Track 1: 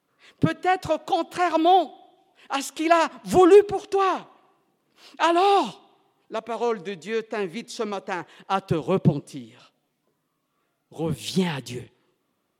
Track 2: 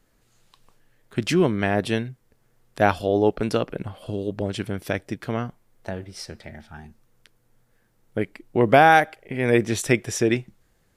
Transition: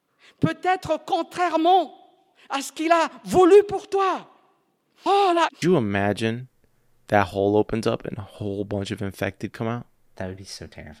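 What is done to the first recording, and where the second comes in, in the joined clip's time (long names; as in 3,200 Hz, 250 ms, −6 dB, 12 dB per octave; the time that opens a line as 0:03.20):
track 1
0:05.06–0:05.62: reverse
0:05.62: continue with track 2 from 0:01.30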